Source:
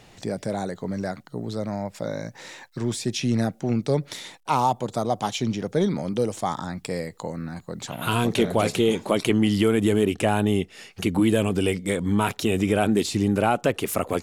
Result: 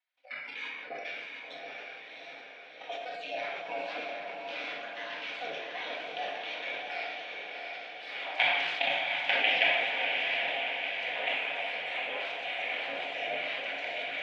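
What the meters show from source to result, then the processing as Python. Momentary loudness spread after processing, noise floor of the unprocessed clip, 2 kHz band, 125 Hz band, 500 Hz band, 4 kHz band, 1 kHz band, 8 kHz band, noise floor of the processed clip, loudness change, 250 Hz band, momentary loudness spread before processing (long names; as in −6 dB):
15 LU, −53 dBFS, +3.5 dB, below −35 dB, −14.0 dB, −0.5 dB, −9.0 dB, below −25 dB, −48 dBFS, −7.5 dB, −30.0 dB, 12 LU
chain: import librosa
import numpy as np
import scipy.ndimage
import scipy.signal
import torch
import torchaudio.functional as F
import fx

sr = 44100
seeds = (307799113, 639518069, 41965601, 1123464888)

y = fx.lower_of_two(x, sr, delay_ms=0.35)
y = fx.spec_gate(y, sr, threshold_db=-20, keep='weak')
y = fx.noise_reduce_blind(y, sr, reduce_db=21)
y = fx.high_shelf(y, sr, hz=2100.0, db=4.0)
y = fx.level_steps(y, sr, step_db=15)
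y = fx.cabinet(y, sr, low_hz=230.0, low_slope=24, high_hz=3400.0, hz=(240.0, 360.0, 700.0, 1200.0, 2300.0), db=(-6, -4, 9, -8, 7))
y = fx.echo_diffused(y, sr, ms=703, feedback_pct=62, wet_db=-3.0)
y = fx.room_shoebox(y, sr, seeds[0], volume_m3=760.0, walls='mixed', distance_m=1.9)
y = fx.sustainer(y, sr, db_per_s=32.0)
y = y * librosa.db_to_amplitude(2.5)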